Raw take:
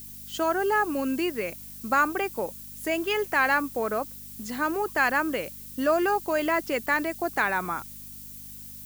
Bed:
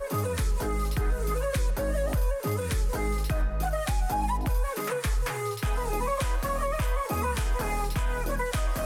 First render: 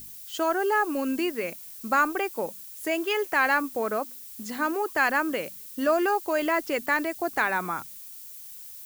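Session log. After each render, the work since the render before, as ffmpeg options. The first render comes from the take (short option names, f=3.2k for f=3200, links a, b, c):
-af "bandreject=f=50:t=h:w=4,bandreject=f=100:t=h:w=4,bandreject=f=150:t=h:w=4,bandreject=f=200:t=h:w=4,bandreject=f=250:t=h:w=4"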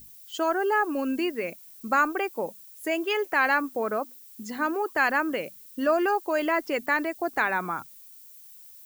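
-af "afftdn=nr=8:nf=-43"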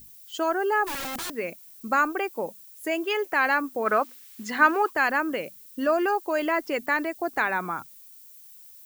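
-filter_complex "[0:a]asplit=3[a][b][c];[a]afade=t=out:st=0.86:d=0.02[d];[b]aeval=exprs='(mod(25.1*val(0)+1,2)-1)/25.1':c=same,afade=t=in:st=0.86:d=0.02,afade=t=out:st=1.31:d=0.02[e];[c]afade=t=in:st=1.31:d=0.02[f];[d][e][f]amix=inputs=3:normalize=0,asplit=3[g][h][i];[g]afade=t=out:st=3.85:d=0.02[j];[h]equalizer=f=1.9k:w=0.49:g=12,afade=t=in:st=3.85:d=0.02,afade=t=out:st=4.89:d=0.02[k];[i]afade=t=in:st=4.89:d=0.02[l];[j][k][l]amix=inputs=3:normalize=0"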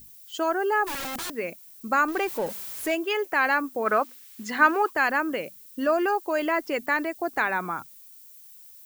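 -filter_complex "[0:a]asettb=1/sr,asplit=3[a][b][c];[a]atrim=end=2.084[d];[b]atrim=start=2.08:end=2.95,asetpts=PTS-STARTPTS,afade=t=in:d=0.004:c=qsin,afade=t=out:st=0.866:d=0.004:c=qsin,aeval=exprs='val(0)+0.5*0.0224*sgn(val(0))':c=same[e];[c]atrim=start=2.946[f];[d][e]acrossfade=d=0.004:c1=hsin:c2=qsin[g];[g][f]acrossfade=d=0.004:c1=qsin:c2=hsin"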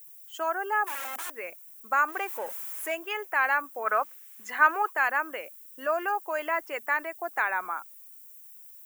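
-af "highpass=750,equalizer=f=4.4k:t=o:w=0.95:g=-13.5"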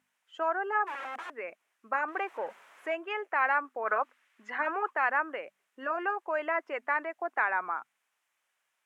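-af "lowpass=2.3k,afftfilt=real='re*lt(hypot(re,im),0.501)':imag='im*lt(hypot(re,im),0.501)':win_size=1024:overlap=0.75"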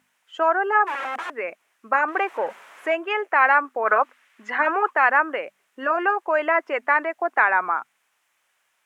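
-af "volume=10dB"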